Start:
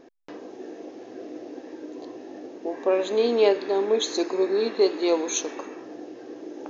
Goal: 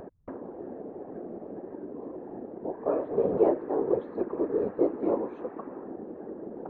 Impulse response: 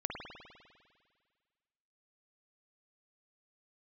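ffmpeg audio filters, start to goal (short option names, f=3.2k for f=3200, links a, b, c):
-af "lowpass=f=1.3k:w=0.5412,lowpass=f=1.3k:w=1.3066,afftfilt=real='hypot(re,im)*cos(2*PI*random(0))':imag='hypot(re,im)*sin(2*PI*random(1))':win_size=512:overlap=0.75,acompressor=mode=upward:threshold=-34dB:ratio=2.5,volume=1.5dB"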